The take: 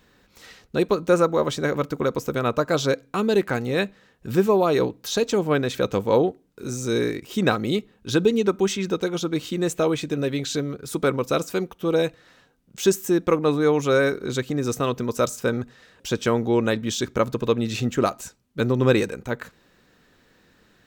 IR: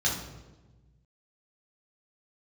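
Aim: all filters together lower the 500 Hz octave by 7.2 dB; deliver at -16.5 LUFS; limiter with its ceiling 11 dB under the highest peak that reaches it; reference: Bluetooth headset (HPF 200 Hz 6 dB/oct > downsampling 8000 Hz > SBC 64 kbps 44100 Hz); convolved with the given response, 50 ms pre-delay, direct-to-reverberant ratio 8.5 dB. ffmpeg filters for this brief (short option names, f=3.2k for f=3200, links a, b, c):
-filter_complex "[0:a]equalizer=f=500:t=o:g=-8,alimiter=limit=-18dB:level=0:latency=1,asplit=2[a][b];[1:a]atrim=start_sample=2205,adelay=50[c];[b][c]afir=irnorm=-1:irlink=0,volume=-18dB[d];[a][d]amix=inputs=2:normalize=0,highpass=f=200:p=1,aresample=8000,aresample=44100,volume=14.5dB" -ar 44100 -c:a sbc -b:a 64k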